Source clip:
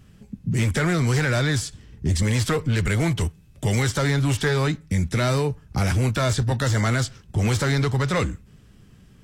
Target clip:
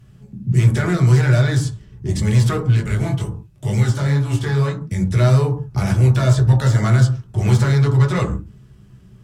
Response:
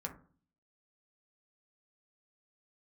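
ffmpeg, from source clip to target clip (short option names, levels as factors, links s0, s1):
-filter_complex "[0:a]asplit=3[s0][s1][s2];[s0]afade=t=out:st=2.75:d=0.02[s3];[s1]flanger=delay=17.5:depth=5.1:speed=2.1,afade=t=in:st=2.75:d=0.02,afade=t=out:st=4.83:d=0.02[s4];[s2]afade=t=in:st=4.83:d=0.02[s5];[s3][s4][s5]amix=inputs=3:normalize=0[s6];[1:a]atrim=start_sample=2205,atrim=end_sample=6174,asetrate=32634,aresample=44100[s7];[s6][s7]afir=irnorm=-1:irlink=0"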